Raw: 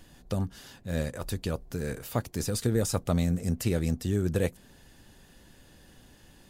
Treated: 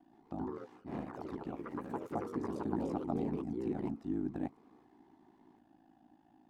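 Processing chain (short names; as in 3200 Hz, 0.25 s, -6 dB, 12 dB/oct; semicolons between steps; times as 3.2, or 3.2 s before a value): double band-pass 470 Hz, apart 1.4 oct; ring modulator 27 Hz; echoes that change speed 0.126 s, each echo +3 st, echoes 3; gain +5 dB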